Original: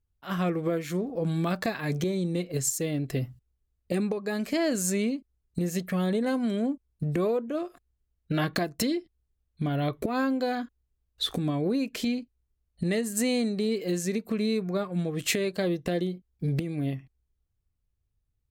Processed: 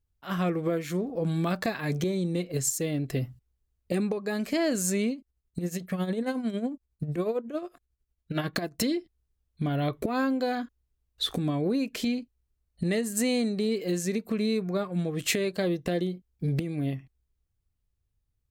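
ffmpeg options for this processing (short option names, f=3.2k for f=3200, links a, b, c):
-filter_complex "[0:a]asettb=1/sr,asplit=3[a][b][c];[a]atrim=end=5.114[d];[b]atrim=start=5.11:end=8.78,asetpts=PTS-STARTPTS,afade=t=in:d=0.004:c=qsin,afade=t=out:st=3.666:d=0.004:c=qsin,tremolo=f=11:d=0.67[e];[c]atrim=start=8.776[f];[d][e]acrossfade=d=0.004:c1=hsin:c2=qsin[g];[g][f]acrossfade=d=0.004:c1=qsin:c2=hsin"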